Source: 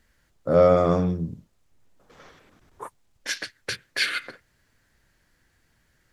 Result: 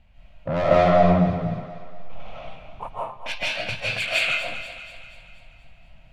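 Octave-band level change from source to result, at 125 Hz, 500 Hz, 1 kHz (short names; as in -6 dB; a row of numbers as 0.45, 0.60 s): +4.0, +0.5, +7.0 dB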